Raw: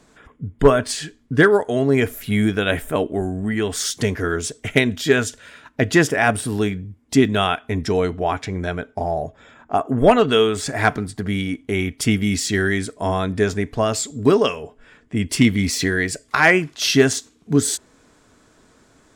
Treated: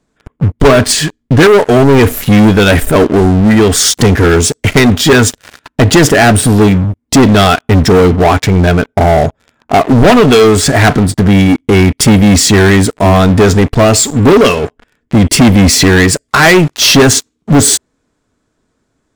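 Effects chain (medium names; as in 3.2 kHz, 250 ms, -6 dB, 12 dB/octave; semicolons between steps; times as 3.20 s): bass shelf 410 Hz +5.5 dB; waveshaping leveller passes 5; trim -2 dB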